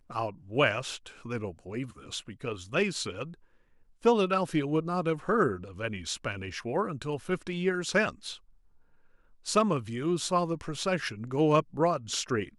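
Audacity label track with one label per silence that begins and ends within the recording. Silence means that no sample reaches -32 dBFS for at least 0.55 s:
3.240000	4.050000	silence
8.330000	9.470000	silence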